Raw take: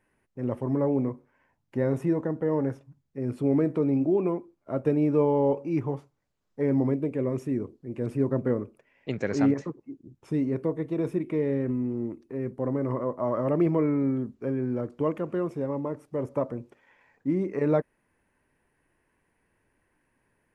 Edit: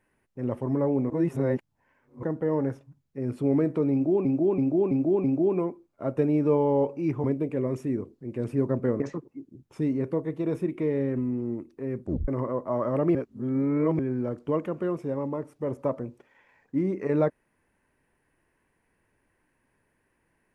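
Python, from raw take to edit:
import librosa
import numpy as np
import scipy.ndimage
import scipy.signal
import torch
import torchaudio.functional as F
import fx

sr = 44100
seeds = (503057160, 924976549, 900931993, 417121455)

y = fx.edit(x, sr, fx.reverse_span(start_s=1.1, length_s=1.13),
    fx.repeat(start_s=3.92, length_s=0.33, count=5),
    fx.cut(start_s=5.92, length_s=0.94),
    fx.cut(start_s=8.62, length_s=0.9),
    fx.tape_stop(start_s=12.54, length_s=0.26),
    fx.reverse_span(start_s=13.67, length_s=0.84), tone=tone)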